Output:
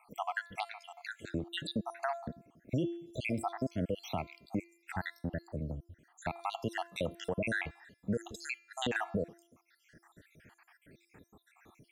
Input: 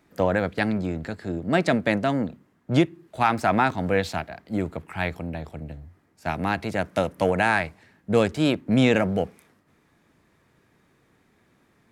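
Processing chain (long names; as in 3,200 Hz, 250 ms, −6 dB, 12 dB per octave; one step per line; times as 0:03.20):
time-frequency cells dropped at random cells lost 73%
hum removal 341.5 Hz, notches 20
brickwall limiter −20 dBFS, peak gain reduction 11 dB
downward compressor 1.5 to 1, threshold −57 dBFS, peak gain reduction 11.5 dB
level +7 dB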